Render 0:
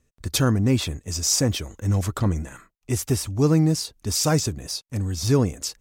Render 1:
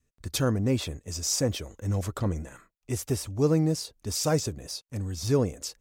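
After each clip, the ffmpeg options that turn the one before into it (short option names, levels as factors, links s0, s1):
-af "adynamicequalizer=threshold=0.0141:dfrequency=520:dqfactor=1.9:tfrequency=520:tqfactor=1.9:attack=5:release=100:ratio=0.375:range=3.5:mode=boostabove:tftype=bell,volume=0.473"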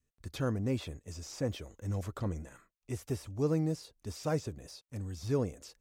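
-filter_complex "[0:a]acrossover=split=3300[s0][s1];[s1]acompressor=threshold=0.00794:ratio=4:attack=1:release=60[s2];[s0][s2]amix=inputs=2:normalize=0,volume=0.447"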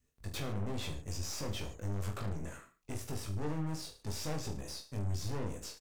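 -af "alimiter=level_in=2.37:limit=0.0631:level=0:latency=1:release=99,volume=0.422,aeval=exprs='(tanh(178*val(0)+0.7)-tanh(0.7))/178':c=same,aecho=1:1:20|44|72.8|107.4|148.8:0.631|0.398|0.251|0.158|0.1,volume=2.37"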